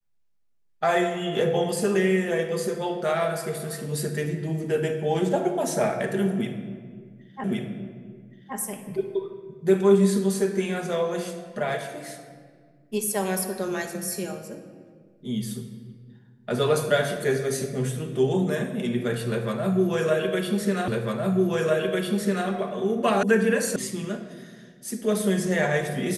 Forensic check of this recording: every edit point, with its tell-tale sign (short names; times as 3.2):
7.44 repeat of the last 1.12 s
20.88 repeat of the last 1.6 s
23.23 sound cut off
23.76 sound cut off